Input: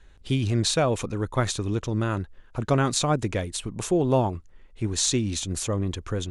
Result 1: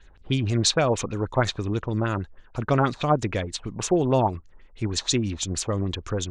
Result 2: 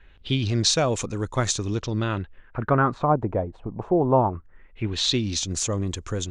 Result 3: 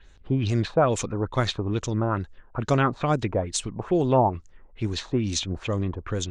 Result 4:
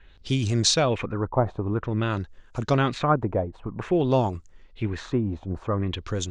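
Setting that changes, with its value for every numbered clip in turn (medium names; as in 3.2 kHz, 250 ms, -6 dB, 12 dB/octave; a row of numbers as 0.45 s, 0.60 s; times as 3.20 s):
LFO low-pass, rate: 6.3 Hz, 0.21 Hz, 2.3 Hz, 0.51 Hz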